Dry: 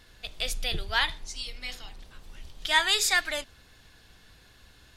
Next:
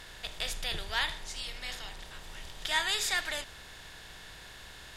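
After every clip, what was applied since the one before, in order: per-bin compression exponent 0.6; gain -8.5 dB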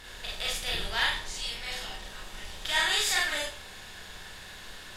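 Schroeder reverb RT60 0.36 s, combs from 30 ms, DRR -3.5 dB; gain -1 dB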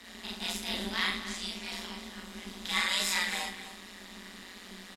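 frequency shift +190 Hz; AM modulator 180 Hz, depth 70%; echo 0.258 s -12 dB

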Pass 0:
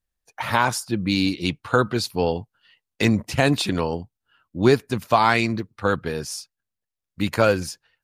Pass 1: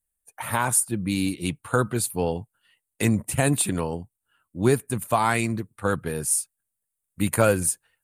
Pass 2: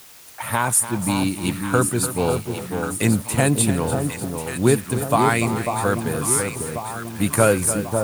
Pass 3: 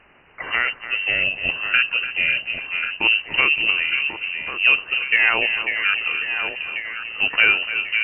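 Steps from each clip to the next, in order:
dynamic EQ 130 Hz, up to +4 dB, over -35 dBFS, Q 1.1; vocal rider within 4 dB 2 s; resonant high shelf 6900 Hz +11 dB, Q 3; gain -5 dB
echo with dull and thin repeats by turns 0.545 s, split 1100 Hz, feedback 72%, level -5 dB; requantised 8-bit, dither triangular; lo-fi delay 0.292 s, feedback 35%, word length 6-bit, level -11.5 dB; gain +3 dB
inverted band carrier 2900 Hz

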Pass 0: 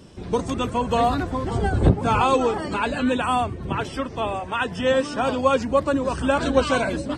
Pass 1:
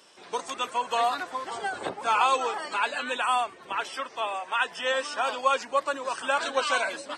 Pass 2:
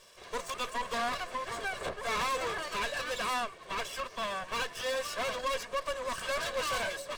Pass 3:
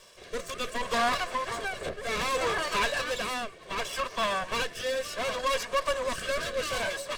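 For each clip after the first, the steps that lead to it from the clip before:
HPF 860 Hz 12 dB/oct
minimum comb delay 1.8 ms; soft clip -28.5 dBFS, distortion -8 dB
rotary speaker horn 0.65 Hz; gain +7 dB

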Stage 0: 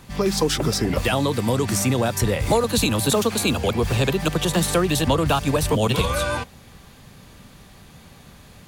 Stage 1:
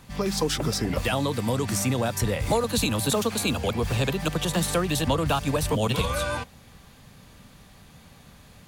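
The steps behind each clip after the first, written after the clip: bell 370 Hz -4 dB 0.31 oct; gain -4 dB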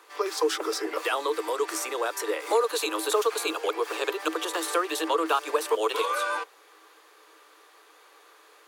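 rippled Chebyshev high-pass 310 Hz, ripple 9 dB; gain +5 dB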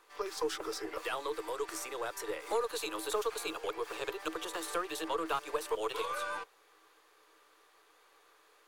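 half-wave gain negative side -3 dB; gain -8 dB

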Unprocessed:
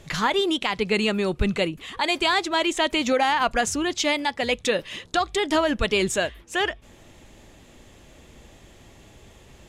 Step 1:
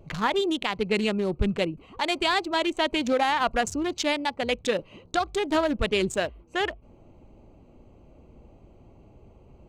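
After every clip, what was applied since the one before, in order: Wiener smoothing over 25 samples; gain -1.5 dB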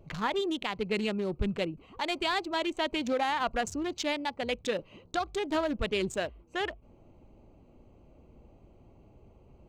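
bell 9600 Hz -3.5 dB 0.53 oct; in parallel at -11.5 dB: soft clip -28 dBFS, distortion -7 dB; on the sum: gain -6.5 dB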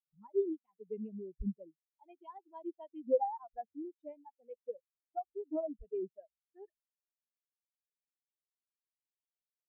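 spectral expander 4:1; gain -1 dB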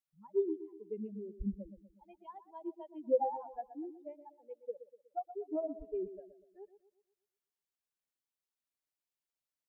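darkening echo 0.122 s, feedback 47%, low-pass 1300 Hz, level -12 dB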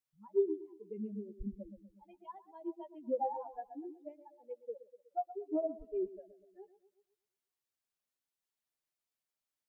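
flange 0.67 Hz, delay 7.9 ms, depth 3.4 ms, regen +20%; gain +3.5 dB

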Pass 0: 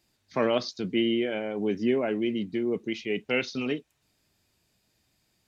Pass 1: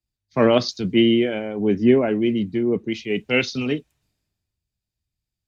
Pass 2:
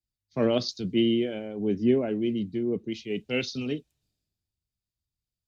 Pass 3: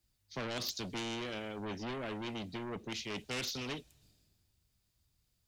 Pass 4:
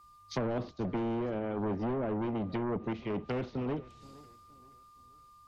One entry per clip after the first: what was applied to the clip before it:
low shelf 150 Hz +12 dB; three-band expander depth 70%; gain +5.5 dB
ten-band EQ 1000 Hz -6 dB, 2000 Hz -6 dB, 4000 Hz +3 dB; gain -6.5 dB
compressor 2:1, threshold -26 dBFS, peak gain reduction 5.5 dB; soft clip -27 dBFS, distortion -12 dB; spectral compressor 2:1; gain +3.5 dB
whine 1200 Hz -64 dBFS; treble ducked by the level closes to 830 Hz, closed at -37 dBFS; warbling echo 0.472 s, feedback 39%, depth 167 cents, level -21 dB; gain +8.5 dB

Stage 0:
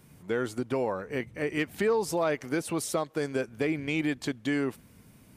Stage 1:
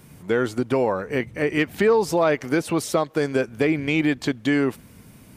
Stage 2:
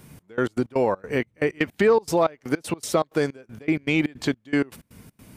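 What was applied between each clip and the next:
dynamic EQ 9900 Hz, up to -7 dB, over -53 dBFS, Q 0.8; gain +8 dB
step gate "xx..x.x.xx." 159 bpm -24 dB

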